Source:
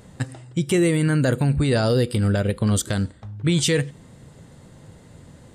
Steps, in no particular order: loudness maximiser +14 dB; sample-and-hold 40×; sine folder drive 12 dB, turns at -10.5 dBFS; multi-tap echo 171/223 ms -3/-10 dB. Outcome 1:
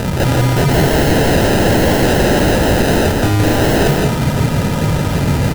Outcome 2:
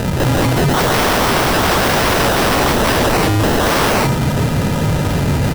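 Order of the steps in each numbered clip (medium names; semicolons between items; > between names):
sample-and-hold > loudness maximiser > sine folder > multi-tap echo; sample-and-hold > multi-tap echo > loudness maximiser > sine folder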